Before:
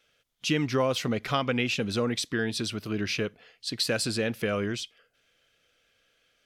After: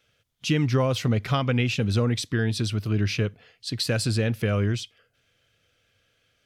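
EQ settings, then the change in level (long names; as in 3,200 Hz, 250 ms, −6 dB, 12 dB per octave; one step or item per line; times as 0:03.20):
parametric band 100 Hz +14 dB 1.3 octaves
0.0 dB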